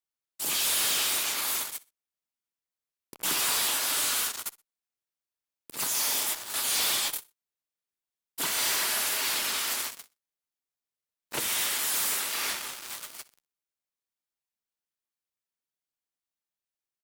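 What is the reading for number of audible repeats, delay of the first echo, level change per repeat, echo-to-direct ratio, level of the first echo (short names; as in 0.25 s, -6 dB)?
2, 62 ms, -11.5 dB, -20.5 dB, -21.0 dB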